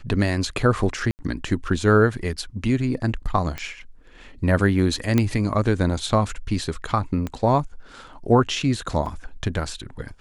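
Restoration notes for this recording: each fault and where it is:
1.11–1.19 s: dropout 79 ms
3.58 s: pop -15 dBFS
5.18 s: pop -7 dBFS
7.27 s: pop -16 dBFS
9.06 s: dropout 2.7 ms

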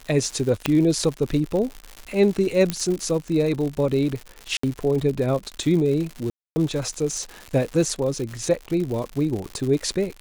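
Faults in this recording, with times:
crackle 160 per s -28 dBFS
0.66 s: pop -6 dBFS
2.70 s: pop -8 dBFS
4.57–4.63 s: dropout 64 ms
6.30–6.56 s: dropout 260 ms

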